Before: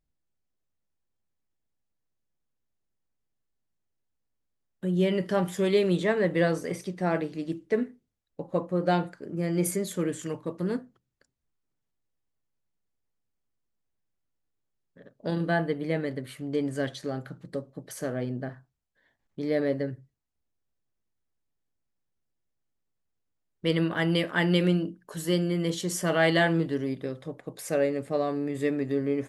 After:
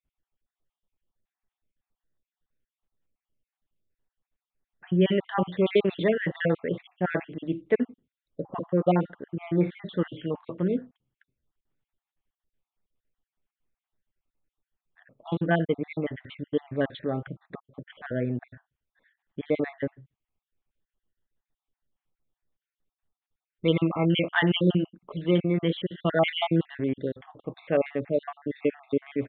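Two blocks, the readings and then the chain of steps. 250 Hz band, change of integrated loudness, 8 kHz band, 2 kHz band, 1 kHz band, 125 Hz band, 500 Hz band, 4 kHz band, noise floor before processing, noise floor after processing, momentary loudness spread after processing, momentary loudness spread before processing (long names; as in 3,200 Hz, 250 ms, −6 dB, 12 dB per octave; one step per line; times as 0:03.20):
+1.0 dB, +1.0 dB, below −35 dB, −1.0 dB, 0.0 dB, +1.0 dB, +0.5 dB, +1.0 dB, −80 dBFS, below −85 dBFS, 13 LU, 13 LU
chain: time-frequency cells dropped at random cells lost 48%
downsampling to 8,000 Hz
level +3.5 dB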